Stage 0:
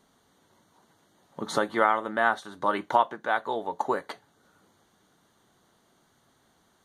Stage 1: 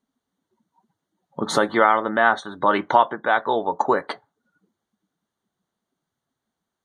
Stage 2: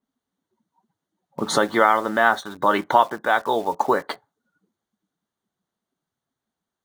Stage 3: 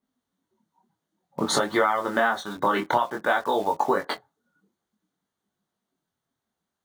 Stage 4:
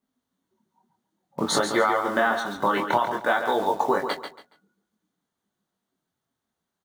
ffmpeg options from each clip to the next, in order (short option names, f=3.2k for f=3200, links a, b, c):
-filter_complex "[0:a]afftdn=nr=26:nf=-50,asplit=2[a][b];[b]alimiter=limit=-18dB:level=0:latency=1:release=11,volume=-2dB[c];[a][c]amix=inputs=2:normalize=0,volume=3.5dB"
-filter_complex "[0:a]asplit=2[a][b];[b]acrusher=bits=5:mix=0:aa=0.000001,volume=-8.5dB[c];[a][c]amix=inputs=2:normalize=0,adynamicequalizer=threshold=0.0251:dfrequency=3600:dqfactor=0.7:tfrequency=3600:tqfactor=0.7:attack=5:release=100:ratio=0.375:range=2:mode=boostabove:tftype=highshelf,volume=-3dB"
-af "acompressor=threshold=-19dB:ratio=5,flanger=delay=19.5:depth=5.9:speed=0.54,volume=4dB"
-af "aecho=1:1:140|280|420:0.398|0.104|0.0269"